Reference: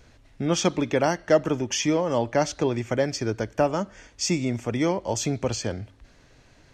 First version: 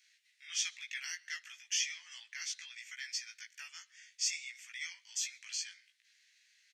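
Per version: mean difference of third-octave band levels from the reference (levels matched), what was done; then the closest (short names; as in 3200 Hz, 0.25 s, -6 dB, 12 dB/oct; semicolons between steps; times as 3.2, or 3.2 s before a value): 20.0 dB: elliptic high-pass 1900 Hz, stop band 80 dB; doubler 17 ms -2.5 dB; outdoor echo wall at 23 m, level -28 dB; gain -7 dB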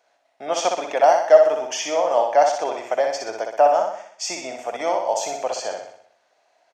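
9.0 dB: gate -45 dBFS, range -9 dB; resonant high-pass 690 Hz, resonance Q 4.9; on a send: feedback echo 62 ms, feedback 51%, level -4.5 dB; on the sum: gain -1.5 dB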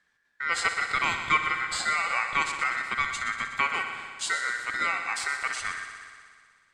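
12.5 dB: gate -50 dBFS, range -13 dB; ring modulator 1700 Hz; multi-head echo 61 ms, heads first and second, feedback 71%, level -12.5 dB; gain -2 dB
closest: second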